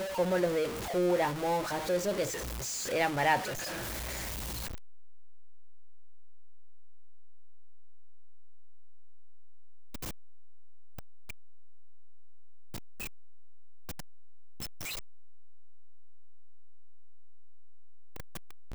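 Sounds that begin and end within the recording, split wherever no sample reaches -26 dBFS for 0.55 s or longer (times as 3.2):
2.93–3.36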